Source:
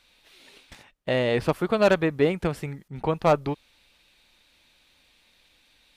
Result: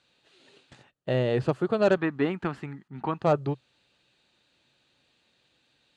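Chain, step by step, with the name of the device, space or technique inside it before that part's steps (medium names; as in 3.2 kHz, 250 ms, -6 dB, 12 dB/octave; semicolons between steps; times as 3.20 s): car door speaker (cabinet simulation 100–7400 Hz, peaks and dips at 130 Hz +9 dB, 380 Hz +4 dB, 1 kHz -4 dB, 2.2 kHz -9 dB, 3.5 kHz -4 dB, 5.5 kHz -9 dB); 1.97–3.22 s: graphic EQ 125/250/500/1000/2000/8000 Hz -10/+7/-11/+8/+5/-7 dB; trim -3 dB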